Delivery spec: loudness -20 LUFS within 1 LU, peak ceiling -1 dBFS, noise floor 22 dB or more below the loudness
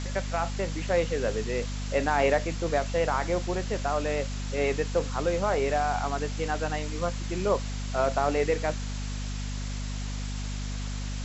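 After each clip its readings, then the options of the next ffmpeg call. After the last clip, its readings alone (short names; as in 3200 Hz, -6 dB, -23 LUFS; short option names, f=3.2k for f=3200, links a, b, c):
hum 50 Hz; harmonics up to 250 Hz; hum level -30 dBFS; noise floor -33 dBFS; noise floor target -51 dBFS; loudness -29.0 LUFS; peak -11.5 dBFS; loudness target -20.0 LUFS
-> -af "bandreject=f=50:t=h:w=6,bandreject=f=100:t=h:w=6,bandreject=f=150:t=h:w=6,bandreject=f=200:t=h:w=6,bandreject=f=250:t=h:w=6"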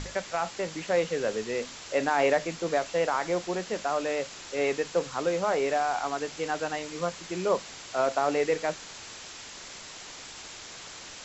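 hum none; noise floor -44 dBFS; noise floor target -51 dBFS
-> -af "afftdn=nr=7:nf=-44"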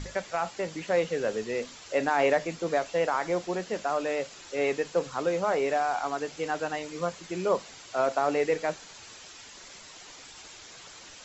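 noise floor -48 dBFS; noise floor target -51 dBFS
-> -af "afftdn=nr=6:nf=-48"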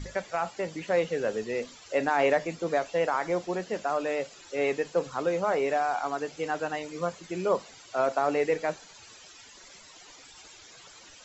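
noise floor -51 dBFS; loudness -29.0 LUFS; peak -13.0 dBFS; loudness target -20.0 LUFS
-> -af "volume=9dB"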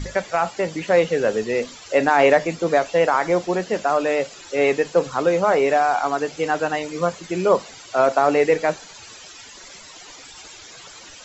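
loudness -20.0 LUFS; peak -4.0 dBFS; noise floor -42 dBFS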